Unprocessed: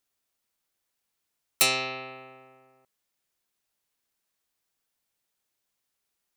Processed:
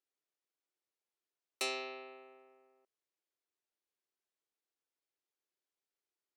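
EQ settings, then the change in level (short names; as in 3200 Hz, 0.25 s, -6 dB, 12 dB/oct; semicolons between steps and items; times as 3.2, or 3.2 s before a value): ladder high-pass 300 Hz, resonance 50%; air absorption 50 m; -3.0 dB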